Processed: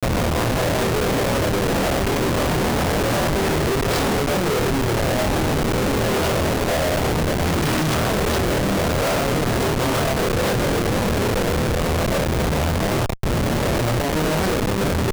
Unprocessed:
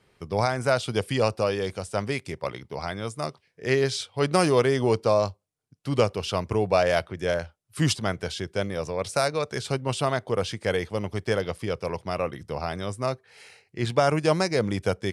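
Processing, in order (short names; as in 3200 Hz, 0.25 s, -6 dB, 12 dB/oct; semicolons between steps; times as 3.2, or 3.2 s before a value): spectral swells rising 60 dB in 1.56 s; notch 1100 Hz, Q 24; harmonic-percussive split percussive +4 dB; tube stage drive 28 dB, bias 0.25; echoes that change speed 0.206 s, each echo +5 st, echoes 2, each echo -6 dB; high shelf 7700 Hz +7 dB; companded quantiser 2-bit; on a send: flutter echo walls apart 4.4 m, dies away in 0.24 s; on the sum: Schmitt trigger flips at -21.5 dBFS; gain +5 dB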